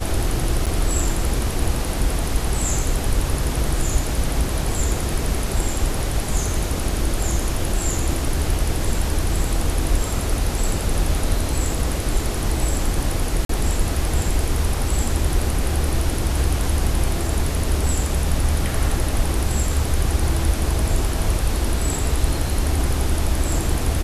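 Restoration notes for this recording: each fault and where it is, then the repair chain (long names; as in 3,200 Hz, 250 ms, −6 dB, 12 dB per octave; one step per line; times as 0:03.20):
0:00.66–0:00.67: drop-out 6.7 ms
0:13.45–0:13.49: drop-out 43 ms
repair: repair the gap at 0:00.66, 6.7 ms
repair the gap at 0:13.45, 43 ms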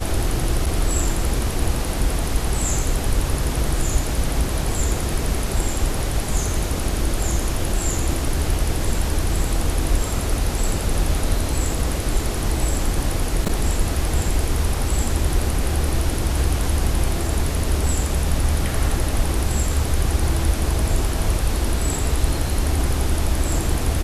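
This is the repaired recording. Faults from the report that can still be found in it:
none of them is left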